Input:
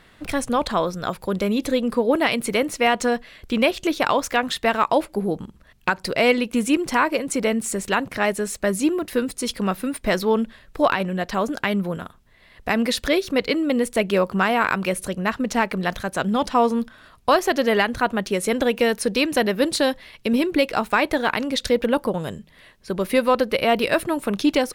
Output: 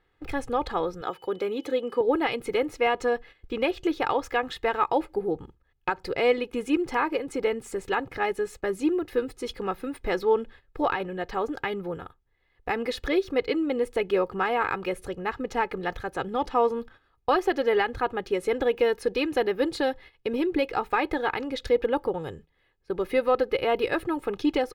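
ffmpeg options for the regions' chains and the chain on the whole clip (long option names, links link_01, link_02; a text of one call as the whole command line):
ffmpeg -i in.wav -filter_complex "[0:a]asettb=1/sr,asplit=3[link_01][link_02][link_03];[link_01]atrim=end=1.014[link_04];[link_02]atrim=start=1.01:end=2.01,asetpts=PTS-STARTPTS,afade=type=in:duration=0.004:curve=qsin,afade=type=out:start_time=0.996:duration=0.004:curve=qsin,highpass=230,aeval=exprs='val(0)+0.00316*sin(2*PI*3000*n/s)':channel_layout=same[link_05];[link_03]atrim=start=2.006[link_06];[link_04][link_05]acrossfade=duration=0.004:curve1=hsin:curve2=qsin[link_07];[link_07][link_06]acrossfade=duration=0.004:curve1=qsin:curve2=hsin,equalizer=frequency=10000:width=0.36:gain=-14.5,agate=range=-12dB:threshold=-40dB:ratio=16:detection=peak,aecho=1:1:2.4:0.71,volume=-5.5dB" out.wav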